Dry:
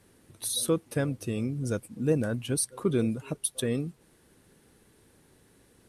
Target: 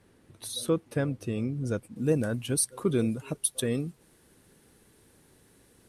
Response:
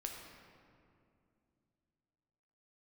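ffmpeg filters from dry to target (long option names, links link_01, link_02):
-af "asetnsamples=nb_out_samples=441:pad=0,asendcmd='1.96 highshelf g 3',highshelf=frequency=5500:gain=-9.5"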